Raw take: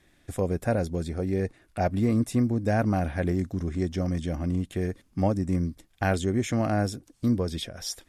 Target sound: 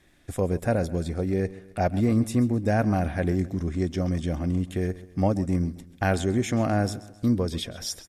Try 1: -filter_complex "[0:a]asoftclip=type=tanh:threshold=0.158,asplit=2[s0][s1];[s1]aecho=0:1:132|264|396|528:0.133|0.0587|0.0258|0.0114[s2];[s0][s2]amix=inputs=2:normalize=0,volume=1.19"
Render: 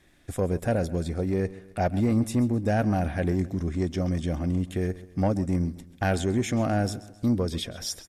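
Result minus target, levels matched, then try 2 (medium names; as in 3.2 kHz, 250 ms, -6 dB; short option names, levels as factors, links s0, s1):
saturation: distortion +17 dB
-filter_complex "[0:a]asoftclip=type=tanh:threshold=0.501,asplit=2[s0][s1];[s1]aecho=0:1:132|264|396|528:0.133|0.0587|0.0258|0.0114[s2];[s0][s2]amix=inputs=2:normalize=0,volume=1.19"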